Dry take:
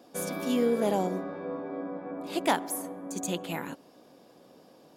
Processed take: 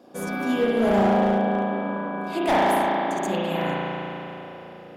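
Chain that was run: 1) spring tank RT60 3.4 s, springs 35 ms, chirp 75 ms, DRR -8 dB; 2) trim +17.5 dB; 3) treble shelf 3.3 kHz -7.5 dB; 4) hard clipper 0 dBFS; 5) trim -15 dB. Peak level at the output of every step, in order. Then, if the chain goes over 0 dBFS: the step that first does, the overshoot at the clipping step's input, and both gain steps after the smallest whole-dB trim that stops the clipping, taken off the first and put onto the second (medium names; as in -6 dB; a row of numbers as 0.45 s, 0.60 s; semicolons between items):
-7.0 dBFS, +10.5 dBFS, +10.0 dBFS, 0.0 dBFS, -15.0 dBFS; step 2, 10.0 dB; step 2 +7.5 dB, step 5 -5 dB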